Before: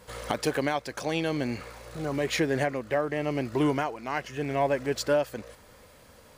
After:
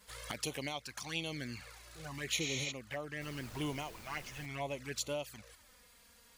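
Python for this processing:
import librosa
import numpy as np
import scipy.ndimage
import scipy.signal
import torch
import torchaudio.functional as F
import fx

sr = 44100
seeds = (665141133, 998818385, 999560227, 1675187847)

y = fx.tone_stack(x, sr, knobs='5-5-5')
y = fx.spec_repair(y, sr, seeds[0], start_s=2.43, length_s=0.26, low_hz=580.0, high_hz=8700.0, source='before')
y = fx.env_flanger(y, sr, rest_ms=5.2, full_db=-39.0)
y = fx.dmg_noise_colour(y, sr, seeds[1], colour='pink', level_db=-59.0, at=(3.2, 4.45), fade=0.02)
y = F.gain(torch.from_numpy(y), 6.0).numpy()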